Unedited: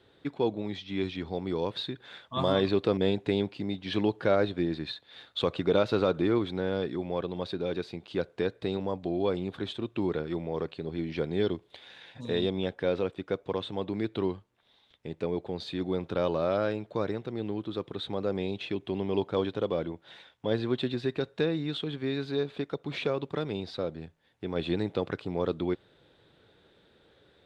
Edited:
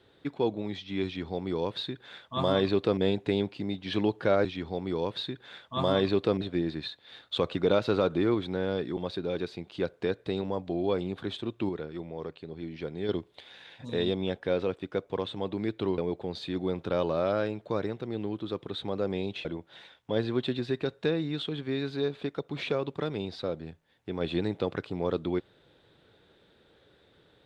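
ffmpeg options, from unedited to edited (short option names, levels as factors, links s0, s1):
-filter_complex "[0:a]asplit=8[s0][s1][s2][s3][s4][s5][s6][s7];[s0]atrim=end=4.452[s8];[s1]atrim=start=1.048:end=3.012[s9];[s2]atrim=start=4.448:end=7.012[s10];[s3]atrim=start=7.328:end=10.052[s11];[s4]atrim=start=10.048:end=11.452,asetpts=PTS-STARTPTS,volume=0.531[s12];[s5]atrim=start=11.448:end=14.342[s13];[s6]atrim=start=15.228:end=18.702[s14];[s7]atrim=start=19.798[s15];[s8][s9]acrossfade=d=0.004:c1=hsin:c2=hsin[s16];[s16][s10]acrossfade=d=0.004:c1=hsin:c2=hsin[s17];[s17][s11]acrossfade=d=0.004:c1=hsin:c2=hsin[s18];[s18][s12]acrossfade=d=0.004:c1=hsin:c2=hsin[s19];[s19][s13]acrossfade=d=0.004:c1=hsin:c2=hsin[s20];[s20][s14]acrossfade=d=0.004:c1=hsin:c2=hsin[s21];[s21][s15]acrossfade=d=0.004:c1=hsin:c2=hsin"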